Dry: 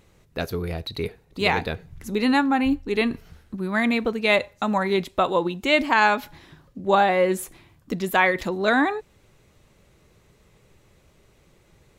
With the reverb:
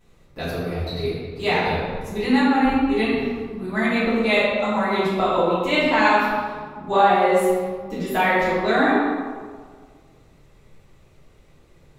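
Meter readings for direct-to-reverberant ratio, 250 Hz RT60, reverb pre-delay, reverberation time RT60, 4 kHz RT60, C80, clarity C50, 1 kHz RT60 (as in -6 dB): -13.0 dB, 1.8 s, 4 ms, 1.7 s, 0.95 s, 0.0 dB, -2.5 dB, 1.6 s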